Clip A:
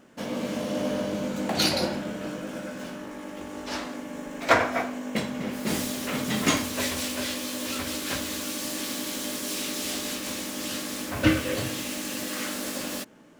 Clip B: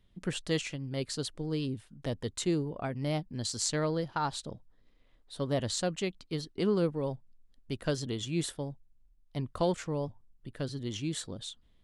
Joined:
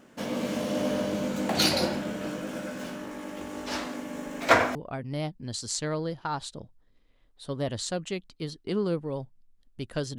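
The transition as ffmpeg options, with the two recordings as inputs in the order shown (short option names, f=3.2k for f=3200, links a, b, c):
-filter_complex "[0:a]apad=whole_dur=10.18,atrim=end=10.18,atrim=end=4.752[a];[1:a]atrim=start=2.658:end=8.09[b];[a][b]acrossfade=d=0.004:c1=hsin:c2=hsin"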